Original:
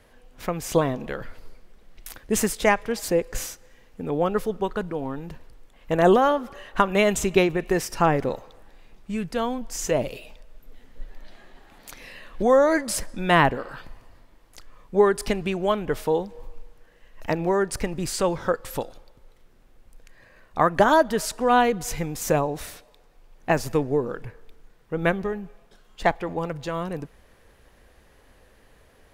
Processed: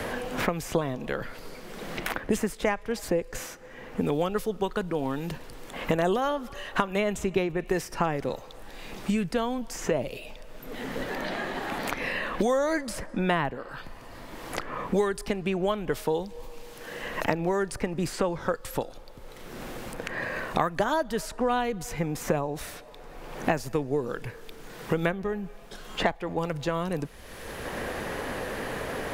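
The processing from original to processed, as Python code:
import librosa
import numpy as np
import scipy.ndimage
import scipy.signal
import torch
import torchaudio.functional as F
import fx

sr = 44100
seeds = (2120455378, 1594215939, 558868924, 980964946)

y = fx.band_squash(x, sr, depth_pct=100)
y = y * librosa.db_to_amplitude(-4.0)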